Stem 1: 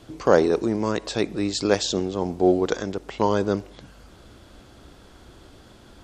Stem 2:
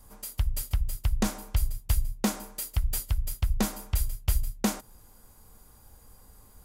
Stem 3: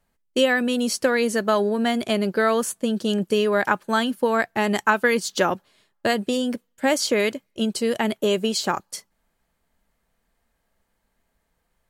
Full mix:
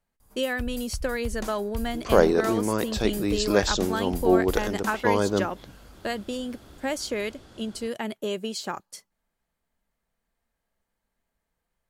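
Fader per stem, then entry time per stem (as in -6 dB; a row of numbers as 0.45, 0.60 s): -1.5, -7.5, -8.5 dB; 1.85, 0.20, 0.00 s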